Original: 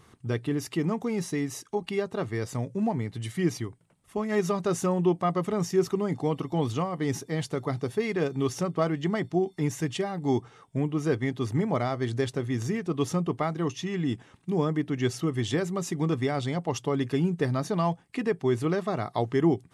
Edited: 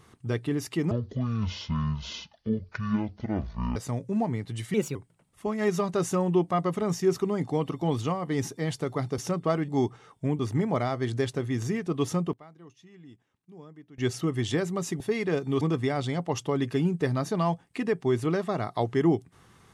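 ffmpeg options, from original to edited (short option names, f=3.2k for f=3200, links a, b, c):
-filter_complex "[0:a]asplit=12[a][b][c][d][e][f][g][h][i][j][k][l];[a]atrim=end=0.914[m];[b]atrim=start=0.91:end=2.42,asetpts=PTS-STARTPTS,asetrate=23373,aresample=44100,atrim=end_sample=125643,asetpts=PTS-STARTPTS[n];[c]atrim=start=2.416:end=3.404[o];[d]atrim=start=3.4:end=3.66,asetpts=PTS-STARTPTS,asetrate=53802,aresample=44100,atrim=end_sample=9398,asetpts=PTS-STARTPTS[p];[e]atrim=start=3.656:end=7.892[q];[f]atrim=start=8.498:end=9.002[r];[g]atrim=start=10.198:end=10.912[s];[h]atrim=start=11.388:end=13.33,asetpts=PTS-STARTPTS,afade=t=out:st=1.732:d=0.21:c=log:silence=0.0841395[t];[i]atrim=start=13.33:end=14.98,asetpts=PTS-STARTPTS,volume=-21.5dB[u];[j]atrim=start=14.98:end=16.002,asetpts=PTS-STARTPTS,afade=t=in:d=0.21:c=log:silence=0.0841395[v];[k]atrim=start=7.888:end=8.502[w];[l]atrim=start=15.998[x];[m][n]acrossfade=d=0.004:c1=hsin:c2=hsin[y];[y][o]acrossfade=d=0.004:c1=hsin:c2=hsin[z];[z][p]acrossfade=d=0.004:c1=hsin:c2=hsin[aa];[aa][q]acrossfade=d=0.004:c1=hsin:c2=hsin[ab];[ab][r]acrossfade=d=0.004:c1=hsin:c2=hsin[ac];[ac][s]acrossfade=d=0.004:c1=hsin:c2=hsin[ad];[t][u][v]concat=n=3:v=0:a=1[ae];[ad][ae]acrossfade=d=0.004:c1=hsin:c2=hsin[af];[af][w]acrossfade=d=0.004:c1=hsin:c2=hsin[ag];[ag][x]acrossfade=d=0.004:c1=hsin:c2=hsin"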